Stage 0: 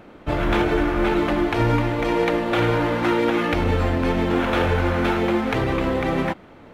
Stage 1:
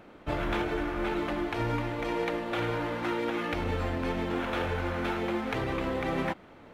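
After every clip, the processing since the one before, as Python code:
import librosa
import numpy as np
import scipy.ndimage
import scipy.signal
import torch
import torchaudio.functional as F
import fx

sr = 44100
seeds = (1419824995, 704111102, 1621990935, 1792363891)

y = fx.low_shelf(x, sr, hz=460.0, db=-3.0)
y = fx.rider(y, sr, range_db=4, speed_s=0.5)
y = y * 10.0 ** (-8.5 / 20.0)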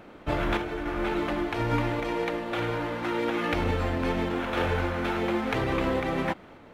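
y = fx.tremolo_random(x, sr, seeds[0], hz=3.5, depth_pct=55)
y = y * 10.0 ** (5.0 / 20.0)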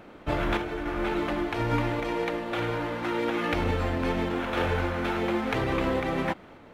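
y = x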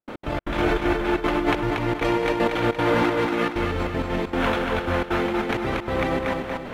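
y = fx.over_compress(x, sr, threshold_db=-33.0, ratio=-1.0)
y = fx.step_gate(y, sr, bpm=194, pattern='.x.xx.xxxx', floor_db=-60.0, edge_ms=4.5)
y = fx.echo_feedback(y, sr, ms=234, feedback_pct=45, wet_db=-4.0)
y = y * 10.0 ** (9.0 / 20.0)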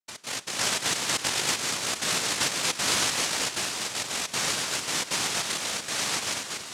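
y = fx.comb_fb(x, sr, f0_hz=170.0, decay_s=0.44, harmonics='all', damping=0.0, mix_pct=50)
y = fx.noise_vocoder(y, sr, seeds[1], bands=1)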